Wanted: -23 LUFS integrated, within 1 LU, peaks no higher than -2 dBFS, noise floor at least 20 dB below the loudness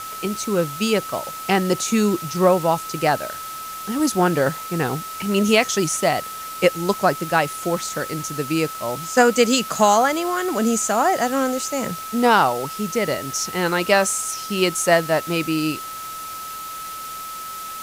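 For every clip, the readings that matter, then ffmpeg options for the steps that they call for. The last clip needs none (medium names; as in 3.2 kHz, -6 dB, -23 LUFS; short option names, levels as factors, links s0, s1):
steady tone 1.3 kHz; tone level -31 dBFS; noise floor -33 dBFS; noise floor target -41 dBFS; loudness -21.0 LUFS; peak level -2.5 dBFS; loudness target -23.0 LUFS
-> -af "bandreject=f=1300:w=30"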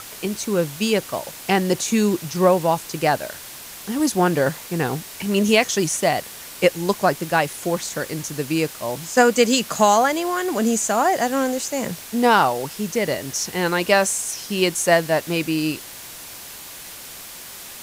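steady tone not found; noise floor -38 dBFS; noise floor target -41 dBFS
-> -af "afftdn=nr=6:nf=-38"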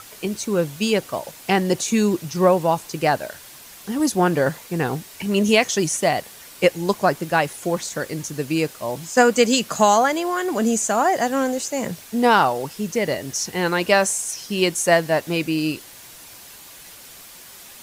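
noise floor -43 dBFS; loudness -21.0 LUFS; peak level -2.5 dBFS; loudness target -23.0 LUFS
-> -af "volume=0.794"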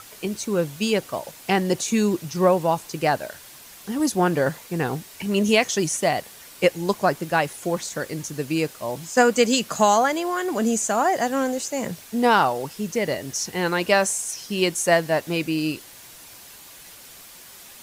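loudness -23.0 LUFS; peak level -4.5 dBFS; noise floor -45 dBFS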